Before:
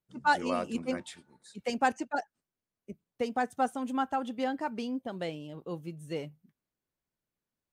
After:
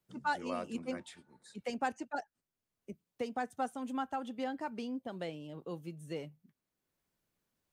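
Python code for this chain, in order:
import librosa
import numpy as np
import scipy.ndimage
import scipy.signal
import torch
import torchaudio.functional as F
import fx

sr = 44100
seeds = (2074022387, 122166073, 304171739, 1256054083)

y = fx.band_squash(x, sr, depth_pct=40)
y = y * 10.0 ** (-6.0 / 20.0)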